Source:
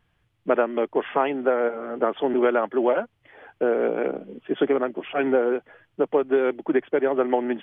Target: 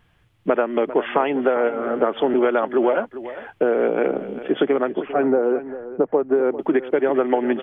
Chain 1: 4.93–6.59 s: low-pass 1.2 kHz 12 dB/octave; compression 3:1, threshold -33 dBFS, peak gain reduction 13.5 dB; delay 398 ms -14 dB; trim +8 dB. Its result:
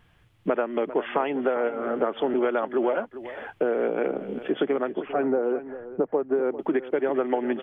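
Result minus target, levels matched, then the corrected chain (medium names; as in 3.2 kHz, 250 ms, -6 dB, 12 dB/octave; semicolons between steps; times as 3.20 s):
compression: peak gain reduction +5.5 dB
4.93–6.59 s: low-pass 1.2 kHz 12 dB/octave; compression 3:1, threshold -24.5 dBFS, peak gain reduction 8 dB; delay 398 ms -14 dB; trim +8 dB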